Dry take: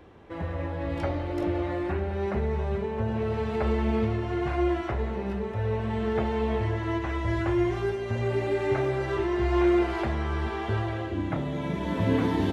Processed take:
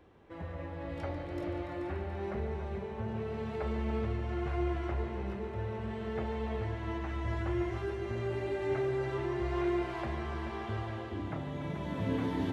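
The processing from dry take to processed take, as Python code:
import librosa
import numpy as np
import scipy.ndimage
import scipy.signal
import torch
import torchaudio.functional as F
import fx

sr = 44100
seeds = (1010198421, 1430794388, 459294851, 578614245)

y = fx.echo_heads(x, sr, ms=144, heads='all three', feedback_pct=62, wet_db=-13.0)
y = y * 10.0 ** (-9.0 / 20.0)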